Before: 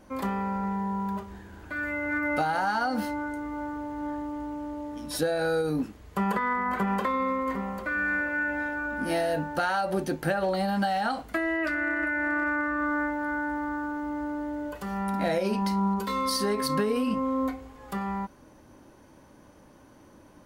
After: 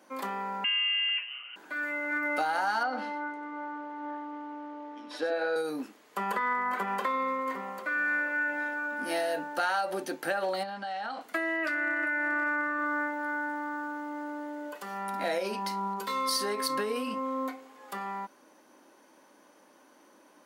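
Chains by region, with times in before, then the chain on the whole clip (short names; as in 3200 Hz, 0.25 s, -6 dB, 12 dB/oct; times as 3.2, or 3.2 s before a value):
0.64–1.56 comb 4.5 ms, depth 50% + inverted band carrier 3000 Hz
2.83–5.56 BPF 220–3100 Hz + echo 94 ms -9.5 dB
10.63–11.21 LPF 4800 Hz + compressor, threshold -29 dBFS
whole clip: HPF 230 Hz 24 dB/oct; low shelf 460 Hz -9 dB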